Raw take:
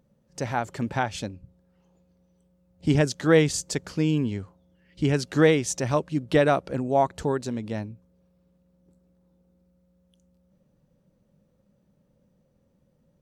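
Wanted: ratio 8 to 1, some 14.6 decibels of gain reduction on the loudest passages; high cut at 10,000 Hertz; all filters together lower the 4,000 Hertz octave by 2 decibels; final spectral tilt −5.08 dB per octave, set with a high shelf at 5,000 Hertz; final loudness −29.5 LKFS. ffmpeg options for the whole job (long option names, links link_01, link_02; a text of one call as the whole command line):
ffmpeg -i in.wav -af "lowpass=10000,equalizer=frequency=4000:width_type=o:gain=-6,highshelf=frequency=5000:gain=6.5,acompressor=threshold=-28dB:ratio=8,volume=4.5dB" out.wav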